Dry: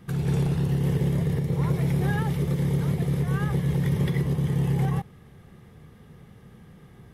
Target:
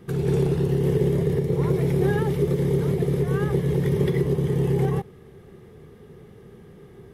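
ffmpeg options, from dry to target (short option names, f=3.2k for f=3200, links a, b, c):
-af "equalizer=f=400:w=2.5:g=13.5"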